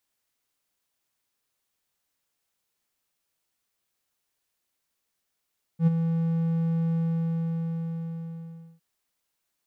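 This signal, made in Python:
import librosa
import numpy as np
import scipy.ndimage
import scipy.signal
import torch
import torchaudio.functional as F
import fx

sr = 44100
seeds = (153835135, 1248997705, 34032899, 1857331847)

y = fx.adsr_tone(sr, wave='triangle', hz=165.0, attack_ms=79.0, decay_ms=22.0, sustain_db=-8.0, held_s=1.15, release_ms=1860.0, level_db=-12.5)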